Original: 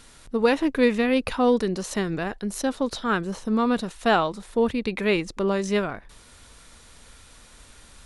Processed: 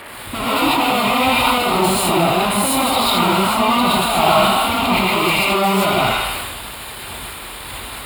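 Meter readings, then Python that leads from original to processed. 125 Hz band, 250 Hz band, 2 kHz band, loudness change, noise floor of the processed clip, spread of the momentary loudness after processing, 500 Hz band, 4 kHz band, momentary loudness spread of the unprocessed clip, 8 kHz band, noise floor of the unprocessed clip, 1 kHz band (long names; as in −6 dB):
+9.5 dB, +4.5 dB, +10.5 dB, +9.0 dB, −32 dBFS, 15 LU, +4.0 dB, +17.0 dB, 7 LU, +15.0 dB, −51 dBFS, +14.0 dB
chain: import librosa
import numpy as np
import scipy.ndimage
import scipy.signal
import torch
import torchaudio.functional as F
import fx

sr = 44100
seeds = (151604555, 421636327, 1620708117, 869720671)

y = fx.peak_eq(x, sr, hz=430.0, db=13.0, octaves=0.4)
y = fx.echo_wet_highpass(y, sr, ms=79, feedback_pct=63, hz=1400.0, wet_db=-6.0)
y = fx.fuzz(y, sr, gain_db=40.0, gate_db=-46.0)
y = scipy.signal.sosfilt(scipy.signal.butter(2, 69.0, 'highpass', fs=sr, output='sos'), y)
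y = fx.fixed_phaser(y, sr, hz=1700.0, stages=6)
y = fx.rev_gated(y, sr, seeds[0], gate_ms=170, shape='rising', drr_db=-7.0)
y = fx.dmg_noise_band(y, sr, seeds[1], low_hz=240.0, high_hz=2400.0, level_db=-32.0)
y = fx.dynamic_eq(y, sr, hz=610.0, q=1.4, threshold_db=-31.0, ratio=4.0, max_db=7)
y = fx.sustainer(y, sr, db_per_s=29.0)
y = y * librosa.db_to_amplitude(-5.0)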